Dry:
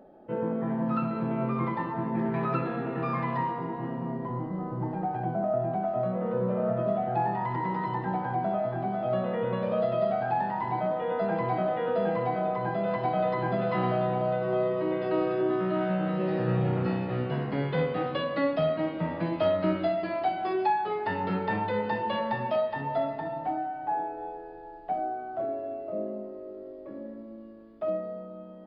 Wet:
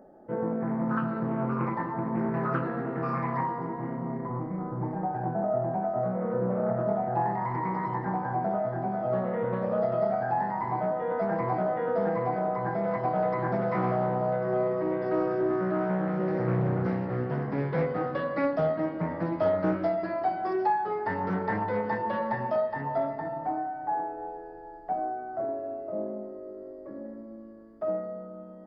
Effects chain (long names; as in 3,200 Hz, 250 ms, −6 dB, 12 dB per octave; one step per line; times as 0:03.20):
flat-topped bell 3,100 Hz −13.5 dB 1 octave
highs frequency-modulated by the lows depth 0.32 ms